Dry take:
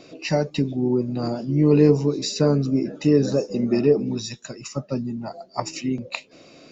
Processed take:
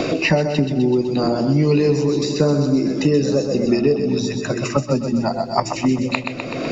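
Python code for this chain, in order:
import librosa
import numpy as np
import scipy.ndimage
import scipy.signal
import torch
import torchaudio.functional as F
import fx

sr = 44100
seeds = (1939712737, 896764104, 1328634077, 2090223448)

y = fx.hum_notches(x, sr, base_hz=60, count=5)
y = fx.echo_feedback(y, sr, ms=126, feedback_pct=47, wet_db=-8.0)
y = fx.band_squash(y, sr, depth_pct=100)
y = y * librosa.db_to_amplitude(3.0)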